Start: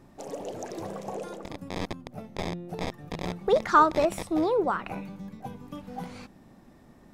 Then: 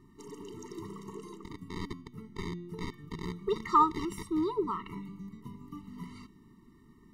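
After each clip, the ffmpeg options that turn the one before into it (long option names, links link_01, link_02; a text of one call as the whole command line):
ffmpeg -i in.wav -af "bandreject=frequency=277.8:width_type=h:width=4,bandreject=frequency=555.6:width_type=h:width=4,bandreject=frequency=833.4:width_type=h:width=4,bandreject=frequency=1111.2:width_type=h:width=4,bandreject=frequency=1389:width_type=h:width=4,bandreject=frequency=1666.8:width_type=h:width=4,bandreject=frequency=1944.6:width_type=h:width=4,bandreject=frequency=2222.4:width_type=h:width=4,bandreject=frequency=2500.2:width_type=h:width=4,bandreject=frequency=2778:width_type=h:width=4,bandreject=frequency=3055.8:width_type=h:width=4,bandreject=frequency=3333.6:width_type=h:width=4,bandreject=frequency=3611.4:width_type=h:width=4,bandreject=frequency=3889.2:width_type=h:width=4,bandreject=frequency=4167:width_type=h:width=4,bandreject=frequency=4444.8:width_type=h:width=4,bandreject=frequency=4722.6:width_type=h:width=4,bandreject=frequency=5000.4:width_type=h:width=4,bandreject=frequency=5278.2:width_type=h:width=4,bandreject=frequency=5556:width_type=h:width=4,bandreject=frequency=5833.8:width_type=h:width=4,bandreject=frequency=6111.6:width_type=h:width=4,bandreject=frequency=6389.4:width_type=h:width=4,bandreject=frequency=6667.2:width_type=h:width=4,afftfilt=real='re*eq(mod(floor(b*sr/1024/450),2),0)':imag='im*eq(mod(floor(b*sr/1024/450),2),0)':win_size=1024:overlap=0.75,volume=-3.5dB" out.wav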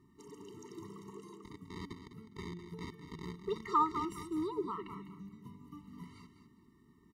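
ffmpeg -i in.wav -filter_complex "[0:a]highpass=49,asplit=2[link_01][link_02];[link_02]aecho=0:1:204|408|612:0.316|0.0727|0.0167[link_03];[link_01][link_03]amix=inputs=2:normalize=0,volume=-6dB" out.wav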